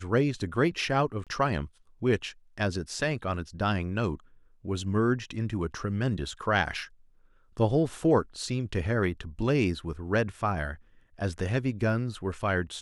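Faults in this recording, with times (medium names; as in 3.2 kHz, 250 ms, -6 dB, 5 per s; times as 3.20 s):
1.24–1.27 s: dropout 27 ms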